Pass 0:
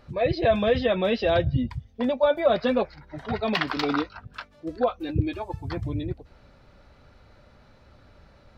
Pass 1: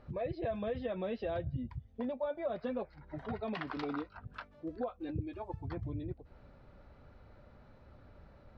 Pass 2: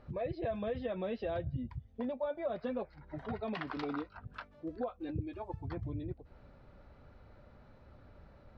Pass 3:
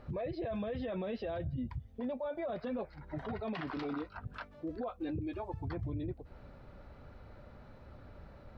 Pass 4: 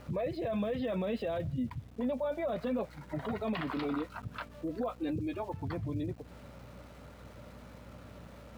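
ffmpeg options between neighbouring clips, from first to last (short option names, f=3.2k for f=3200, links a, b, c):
-af "lowpass=f=1.3k:p=1,acompressor=threshold=-36dB:ratio=2.5,volume=-3dB"
-af anull
-af "alimiter=level_in=11.5dB:limit=-24dB:level=0:latency=1:release=23,volume=-11.5dB,volume=4.5dB"
-af "highpass=f=100:w=0.5412,highpass=f=100:w=1.3066,equalizer=f=130:t=q:w=4:g=-4,equalizer=f=360:t=q:w=4:g=-5,equalizer=f=780:t=q:w=4:g=-4,equalizer=f=1.6k:t=q:w=4:g=-4,lowpass=f=4.7k:w=0.5412,lowpass=f=4.7k:w=1.3066,aeval=exprs='val(0)+0.00126*(sin(2*PI*60*n/s)+sin(2*PI*2*60*n/s)/2+sin(2*PI*3*60*n/s)/3+sin(2*PI*4*60*n/s)/4+sin(2*PI*5*60*n/s)/5)':c=same,aeval=exprs='val(0)*gte(abs(val(0)),0.00106)':c=same,volume=5.5dB"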